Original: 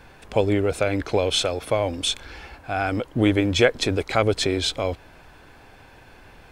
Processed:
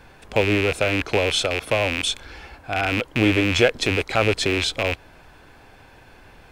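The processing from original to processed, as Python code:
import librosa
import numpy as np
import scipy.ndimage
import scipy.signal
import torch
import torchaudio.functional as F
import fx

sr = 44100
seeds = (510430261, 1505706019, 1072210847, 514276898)

y = fx.rattle_buzz(x, sr, strikes_db=-33.0, level_db=-11.0)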